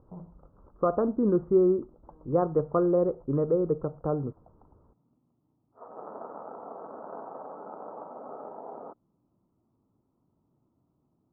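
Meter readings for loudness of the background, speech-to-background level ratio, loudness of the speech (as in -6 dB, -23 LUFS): -43.0 LUFS, 16.5 dB, -26.5 LUFS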